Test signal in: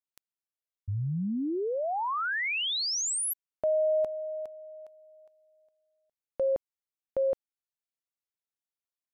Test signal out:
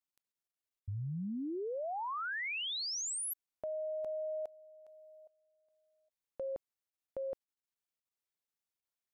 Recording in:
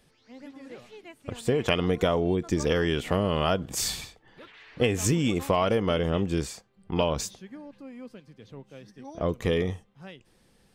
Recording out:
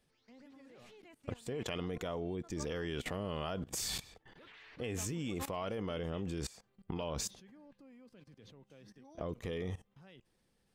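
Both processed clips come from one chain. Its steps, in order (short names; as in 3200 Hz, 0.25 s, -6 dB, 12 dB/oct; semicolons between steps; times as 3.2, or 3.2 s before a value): level quantiser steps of 19 dB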